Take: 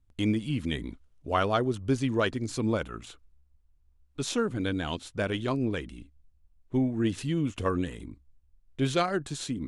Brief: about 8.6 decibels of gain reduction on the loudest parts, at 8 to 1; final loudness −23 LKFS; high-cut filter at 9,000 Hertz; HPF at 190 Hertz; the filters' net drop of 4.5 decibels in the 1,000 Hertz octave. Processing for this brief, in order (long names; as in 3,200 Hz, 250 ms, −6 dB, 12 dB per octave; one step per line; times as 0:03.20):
high-pass filter 190 Hz
low-pass filter 9,000 Hz
parametric band 1,000 Hz −6.5 dB
downward compressor 8 to 1, threshold −32 dBFS
level +15 dB